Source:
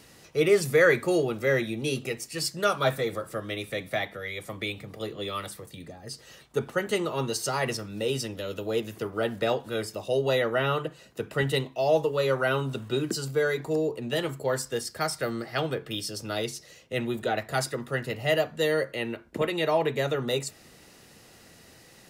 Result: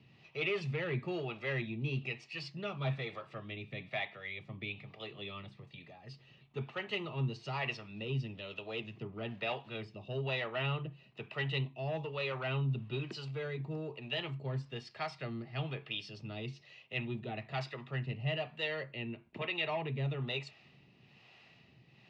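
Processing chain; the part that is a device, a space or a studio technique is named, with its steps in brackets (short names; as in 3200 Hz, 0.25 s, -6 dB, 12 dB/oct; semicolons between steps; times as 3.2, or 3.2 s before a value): guitar amplifier with harmonic tremolo (harmonic tremolo 1.1 Hz, depth 70%, crossover 420 Hz; soft clip -21.5 dBFS, distortion -17 dB; speaker cabinet 100–3900 Hz, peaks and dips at 130 Hz +9 dB, 300 Hz -6 dB, 500 Hz -10 dB, 1500 Hz -9 dB, 2600 Hz +9 dB); gain -4.5 dB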